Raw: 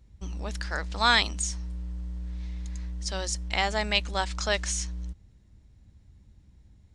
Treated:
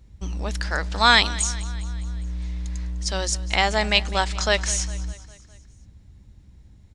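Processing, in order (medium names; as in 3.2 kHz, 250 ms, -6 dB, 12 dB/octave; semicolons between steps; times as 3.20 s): feedback delay 203 ms, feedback 57%, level -18.5 dB; trim +6 dB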